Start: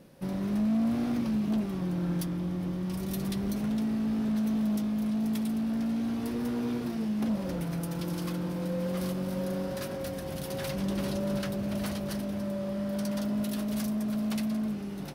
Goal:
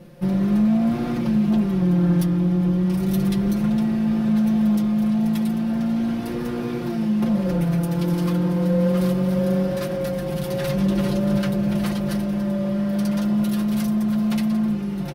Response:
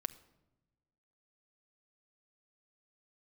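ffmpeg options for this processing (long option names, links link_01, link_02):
-filter_complex "[0:a]aecho=1:1:5.7:0.85,asplit=2[link_01][link_02];[1:a]atrim=start_sample=2205,lowpass=5100,lowshelf=frequency=170:gain=9.5[link_03];[link_02][link_03]afir=irnorm=-1:irlink=0,volume=-4dB[link_04];[link_01][link_04]amix=inputs=2:normalize=0,volume=1.5dB"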